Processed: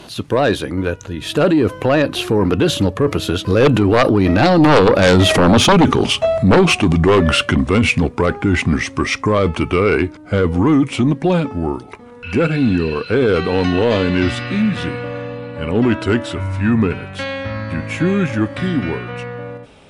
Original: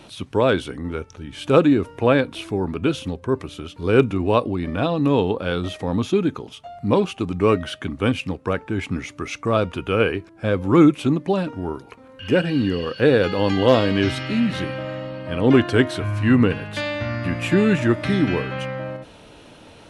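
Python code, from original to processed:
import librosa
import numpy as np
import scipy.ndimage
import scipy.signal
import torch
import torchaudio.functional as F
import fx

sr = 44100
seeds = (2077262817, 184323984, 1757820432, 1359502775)

p1 = fx.doppler_pass(x, sr, speed_mps=29, closest_m=17.0, pass_at_s=5.43)
p2 = fx.over_compress(p1, sr, threshold_db=-39.0, ratio=-1.0)
p3 = p1 + (p2 * librosa.db_to_amplitude(0.0))
p4 = fx.fold_sine(p3, sr, drive_db=11, ceiling_db=-8.5)
y = p4 * librosa.db_to_amplitude(2.5)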